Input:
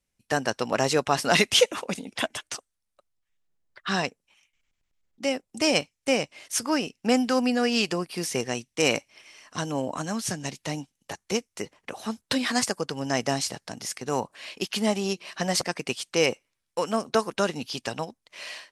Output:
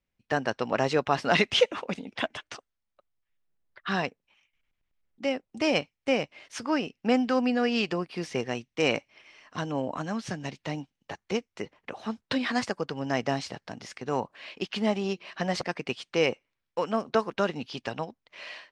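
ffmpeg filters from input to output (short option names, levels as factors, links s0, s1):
-af "lowpass=3400,volume=0.841"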